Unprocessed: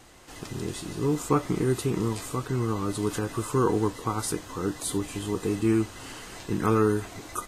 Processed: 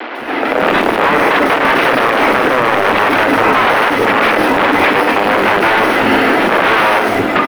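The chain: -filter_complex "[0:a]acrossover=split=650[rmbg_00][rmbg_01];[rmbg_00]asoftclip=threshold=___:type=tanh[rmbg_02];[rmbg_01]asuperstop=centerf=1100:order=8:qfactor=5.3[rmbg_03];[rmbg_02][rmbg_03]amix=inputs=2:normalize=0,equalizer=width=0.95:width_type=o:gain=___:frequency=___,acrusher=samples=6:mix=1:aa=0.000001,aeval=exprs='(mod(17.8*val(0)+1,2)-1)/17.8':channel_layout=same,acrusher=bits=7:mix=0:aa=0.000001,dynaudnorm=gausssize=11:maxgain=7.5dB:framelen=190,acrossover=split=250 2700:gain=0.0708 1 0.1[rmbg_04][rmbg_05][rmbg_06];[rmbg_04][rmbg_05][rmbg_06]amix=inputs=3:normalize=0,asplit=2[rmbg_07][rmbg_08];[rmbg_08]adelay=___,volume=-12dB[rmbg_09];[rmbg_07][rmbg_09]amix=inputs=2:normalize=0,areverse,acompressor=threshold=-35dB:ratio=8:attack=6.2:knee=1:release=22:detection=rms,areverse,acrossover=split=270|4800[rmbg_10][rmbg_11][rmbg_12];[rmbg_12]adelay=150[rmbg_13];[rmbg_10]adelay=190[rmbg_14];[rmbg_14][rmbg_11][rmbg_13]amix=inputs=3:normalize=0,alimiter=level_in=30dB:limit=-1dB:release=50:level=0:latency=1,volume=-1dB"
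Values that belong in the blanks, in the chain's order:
-28dB, 10.5, 230, 45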